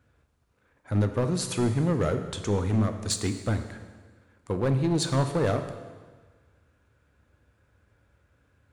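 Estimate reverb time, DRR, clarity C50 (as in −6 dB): 1.5 s, 7.0 dB, 9.0 dB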